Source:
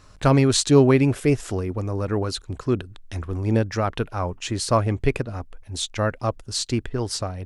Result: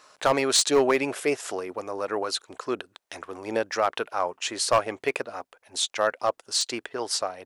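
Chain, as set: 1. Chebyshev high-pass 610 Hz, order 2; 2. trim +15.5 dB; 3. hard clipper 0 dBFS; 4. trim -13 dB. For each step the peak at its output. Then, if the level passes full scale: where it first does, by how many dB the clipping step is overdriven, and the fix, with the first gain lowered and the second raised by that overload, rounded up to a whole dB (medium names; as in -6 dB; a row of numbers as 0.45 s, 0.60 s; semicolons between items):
-7.5 dBFS, +8.0 dBFS, 0.0 dBFS, -13.0 dBFS; step 2, 8.0 dB; step 2 +7.5 dB, step 4 -5 dB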